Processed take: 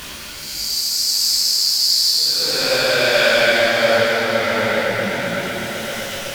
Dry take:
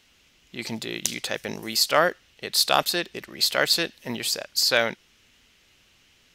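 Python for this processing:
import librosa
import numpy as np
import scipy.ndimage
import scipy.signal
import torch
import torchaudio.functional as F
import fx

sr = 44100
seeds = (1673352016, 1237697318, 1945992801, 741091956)

p1 = x + 0.5 * 10.0 ** (-29.5 / 20.0) * np.sign(x)
p2 = fx.rider(p1, sr, range_db=10, speed_s=0.5)
p3 = p1 + F.gain(torch.from_numpy(p2), -2.5).numpy()
p4 = fx.vibrato(p3, sr, rate_hz=1.8, depth_cents=24.0)
p5 = fx.paulstretch(p4, sr, seeds[0], factor=13.0, window_s=0.1, from_s=4.51)
p6 = p5 + fx.echo_swell(p5, sr, ms=127, loudest=5, wet_db=-15.5, dry=0)
p7 = fx.detune_double(p6, sr, cents=52)
y = F.gain(torch.from_numpy(p7), 2.0).numpy()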